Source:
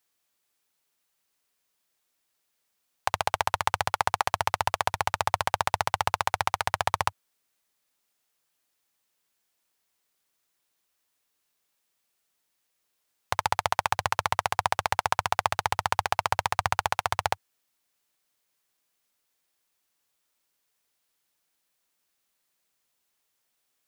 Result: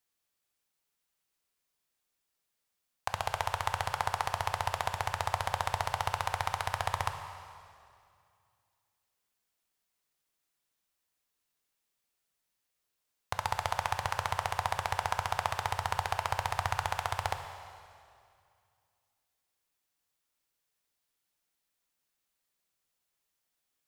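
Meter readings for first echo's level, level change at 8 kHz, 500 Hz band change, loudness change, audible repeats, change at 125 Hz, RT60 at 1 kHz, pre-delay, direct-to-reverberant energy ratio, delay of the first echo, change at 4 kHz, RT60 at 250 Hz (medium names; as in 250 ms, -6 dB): no echo, -6.5 dB, -6.0 dB, -6.0 dB, no echo, -1.0 dB, 2.3 s, 7 ms, 6.5 dB, no echo, -6.0 dB, 2.3 s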